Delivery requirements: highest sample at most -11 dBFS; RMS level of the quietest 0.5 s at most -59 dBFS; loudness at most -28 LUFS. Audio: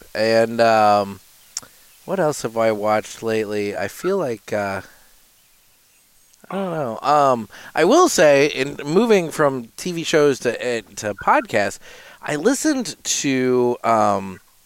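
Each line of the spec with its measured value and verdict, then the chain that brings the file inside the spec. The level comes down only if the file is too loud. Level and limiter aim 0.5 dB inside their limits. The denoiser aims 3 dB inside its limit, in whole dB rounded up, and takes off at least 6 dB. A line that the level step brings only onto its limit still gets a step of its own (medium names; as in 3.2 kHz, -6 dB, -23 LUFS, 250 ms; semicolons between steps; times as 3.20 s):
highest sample -4.0 dBFS: fail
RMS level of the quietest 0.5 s -56 dBFS: fail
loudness -19.0 LUFS: fail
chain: trim -9.5 dB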